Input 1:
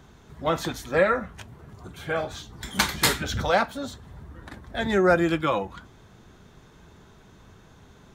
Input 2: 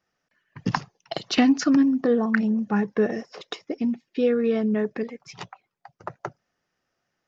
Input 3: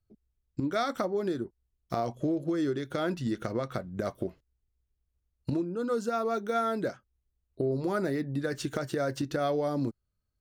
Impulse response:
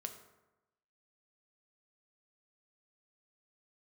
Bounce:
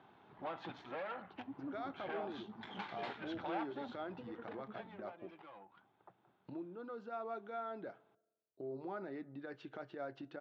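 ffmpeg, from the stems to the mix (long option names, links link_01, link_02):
-filter_complex "[0:a]acompressor=threshold=-31dB:ratio=4,aeval=exprs='(tanh(44.7*val(0)+0.65)-tanh(0.65))/44.7':channel_layout=same,volume=-5dB,afade=type=out:start_time=4.38:duration=0.58:silence=0.237137[link_01];[1:a]lowpass=frequency=2100:poles=1,aeval=exprs='val(0)*pow(10,-27*(0.5-0.5*cos(2*PI*10*n/s))/20)':channel_layout=same,volume=-18dB[link_02];[2:a]adelay=1000,volume=-13.5dB,asplit=2[link_03][link_04];[link_04]volume=-13dB[link_05];[link_02][link_03]amix=inputs=2:normalize=0,alimiter=level_in=12.5dB:limit=-24dB:level=0:latency=1:release=40,volume=-12.5dB,volume=0dB[link_06];[3:a]atrim=start_sample=2205[link_07];[link_05][link_07]afir=irnorm=-1:irlink=0[link_08];[link_01][link_06][link_08]amix=inputs=3:normalize=0,highpass=frequency=140:width=0.5412,highpass=frequency=140:width=1.3066,equalizer=frequency=150:width_type=q:width=4:gain=-10,equalizer=frequency=230:width_type=q:width=4:gain=-6,equalizer=frequency=470:width_type=q:width=4:gain=-4,equalizer=frequency=820:width_type=q:width=4:gain=8,equalizer=frequency=1900:width_type=q:width=4:gain=-3,lowpass=frequency=3200:width=0.5412,lowpass=frequency=3200:width=1.3066"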